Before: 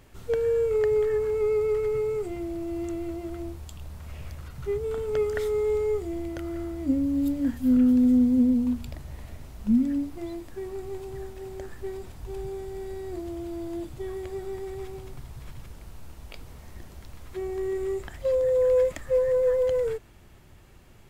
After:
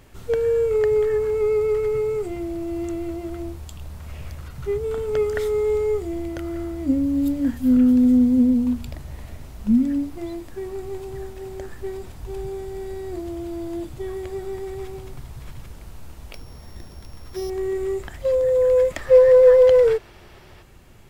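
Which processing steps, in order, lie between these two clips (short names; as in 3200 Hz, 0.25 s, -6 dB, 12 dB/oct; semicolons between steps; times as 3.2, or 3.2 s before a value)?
16.34–17.5 sample sorter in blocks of 8 samples; 18.97–20.63 spectral gain 340–6000 Hz +7 dB; gain +4 dB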